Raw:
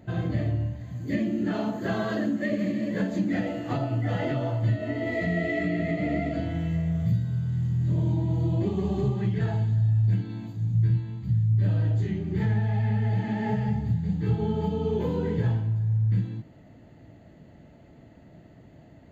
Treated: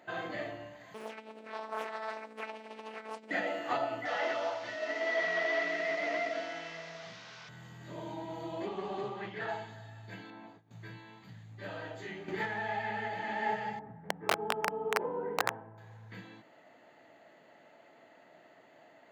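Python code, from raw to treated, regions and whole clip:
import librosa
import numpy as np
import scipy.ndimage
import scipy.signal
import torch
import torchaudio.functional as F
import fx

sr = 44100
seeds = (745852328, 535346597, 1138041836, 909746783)

y = fx.chain(x, sr, fx.robotise(hz=219.0),
    fx.over_compress(threshold_db=-37.0, ratio=-1.0),
    fx.doppler_dist(depth_ms=0.92), at=(0.94, 3.31))
y = fx.chain(y, sr, fx.delta_mod(bps=32000, step_db=-41.5),
    fx.highpass(hz=410.0, slope=6), at=(4.05, 7.49))
y = fx.chain(y, sr, fx.air_absorb(metres=85.0),
    fx.doppler_dist(depth_ms=0.1), at=(8.66, 9.49))
y = fx.chain(y, sr, fx.lowpass(hz=1000.0, slope=6),
    fx.low_shelf(hz=200.0, db=-6.0),
    fx.over_compress(threshold_db=-37.0, ratio=-1.0), at=(10.3, 10.71))
y = fx.chain(y, sr, fx.clip_hard(threshold_db=-17.5),
    fx.env_flatten(amount_pct=100), at=(12.28, 13.08))
y = fx.chain(y, sr, fx.bessel_lowpass(hz=1000.0, order=4),
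    fx.low_shelf(hz=110.0, db=-3.0),
    fx.overflow_wrap(gain_db=18.5), at=(13.79, 15.78))
y = scipy.signal.sosfilt(scipy.signal.butter(2, 810.0, 'highpass', fs=sr, output='sos'), y)
y = fx.high_shelf(y, sr, hz=3300.0, db=-9.0)
y = y * librosa.db_to_amplitude(5.5)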